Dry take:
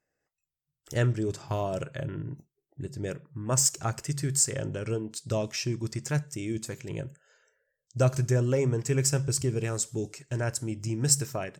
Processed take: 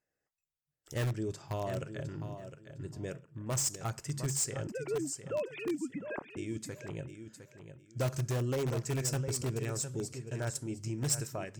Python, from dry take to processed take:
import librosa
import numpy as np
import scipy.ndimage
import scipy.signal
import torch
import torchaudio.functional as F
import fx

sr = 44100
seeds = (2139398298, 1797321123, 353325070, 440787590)

p1 = fx.sine_speech(x, sr, at=(4.67, 6.37))
p2 = fx.echo_feedback(p1, sr, ms=708, feedback_pct=23, wet_db=-10.0)
p3 = (np.mod(10.0 ** (20.0 / 20.0) * p2 + 1.0, 2.0) - 1.0) / 10.0 ** (20.0 / 20.0)
p4 = p2 + F.gain(torch.from_numpy(p3), -8.0).numpy()
y = F.gain(torch.from_numpy(p4), -9.0).numpy()